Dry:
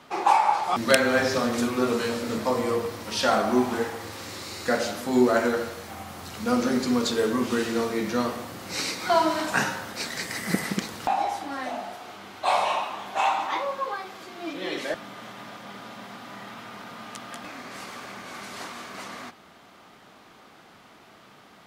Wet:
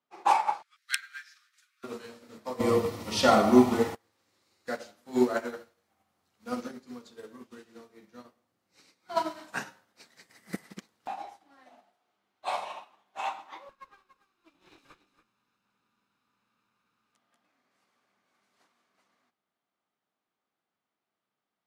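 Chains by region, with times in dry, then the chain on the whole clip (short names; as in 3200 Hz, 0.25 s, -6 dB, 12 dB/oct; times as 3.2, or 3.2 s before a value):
0.62–1.84 steep high-pass 1400 Hz 48 dB/oct + high shelf 9400 Hz -3 dB
2.6–3.95 Butterworth band-stop 1600 Hz, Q 6.9 + low shelf 250 Hz +10 dB + fast leveller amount 50%
6.71–9.17 low shelf 180 Hz +3.5 dB + flange 1.1 Hz, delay 2.2 ms, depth 6 ms, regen -90%
13.69–17.15 minimum comb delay 0.76 ms + echo 0.285 s -5.5 dB
whole clip: low shelf 78 Hz -10 dB; upward expander 2.5:1, over -39 dBFS; gain +1.5 dB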